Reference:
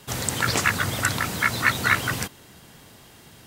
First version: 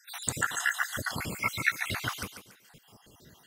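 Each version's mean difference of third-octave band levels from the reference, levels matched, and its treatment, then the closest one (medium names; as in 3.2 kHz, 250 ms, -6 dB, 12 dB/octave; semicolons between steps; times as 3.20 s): 7.5 dB: random holes in the spectrogram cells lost 68%; on a send: thinning echo 142 ms, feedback 31%, high-pass 270 Hz, level -8 dB; on the sum: trim -4 dB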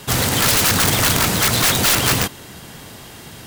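4.0 dB: in parallel at +3 dB: peak limiter -11.5 dBFS, peak gain reduction 8 dB; on the sum: integer overflow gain 13 dB; trim +3.5 dB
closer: second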